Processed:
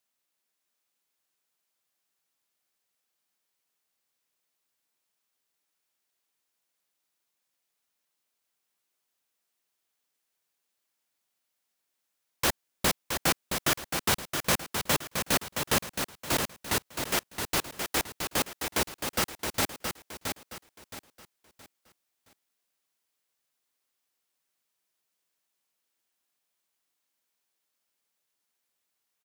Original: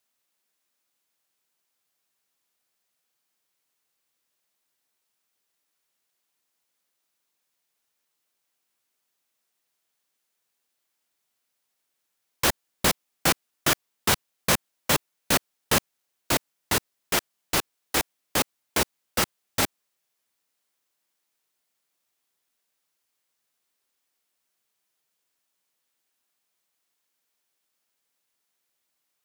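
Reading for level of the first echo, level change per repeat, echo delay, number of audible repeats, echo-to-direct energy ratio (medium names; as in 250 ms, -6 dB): -6.0 dB, -10.0 dB, 670 ms, 3, -5.5 dB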